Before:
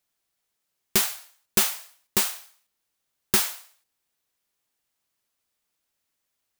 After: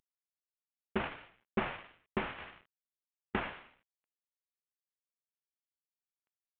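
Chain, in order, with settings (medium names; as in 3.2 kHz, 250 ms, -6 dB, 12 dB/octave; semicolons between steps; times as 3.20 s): CVSD coder 16 kbps; 2.38–3.35 s: compressor with a negative ratio -55 dBFS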